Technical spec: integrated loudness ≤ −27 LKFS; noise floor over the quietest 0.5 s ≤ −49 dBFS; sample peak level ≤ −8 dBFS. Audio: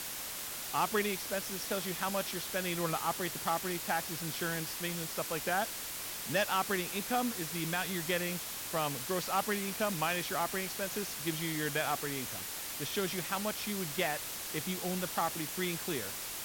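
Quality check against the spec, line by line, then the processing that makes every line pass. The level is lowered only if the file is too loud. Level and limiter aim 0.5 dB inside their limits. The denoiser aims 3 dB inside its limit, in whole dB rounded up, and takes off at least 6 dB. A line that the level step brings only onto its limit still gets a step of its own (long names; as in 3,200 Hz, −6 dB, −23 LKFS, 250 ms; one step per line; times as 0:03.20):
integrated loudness −34.0 LKFS: in spec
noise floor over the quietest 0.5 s −41 dBFS: out of spec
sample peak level −19.0 dBFS: in spec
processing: broadband denoise 11 dB, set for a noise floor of −41 dBFS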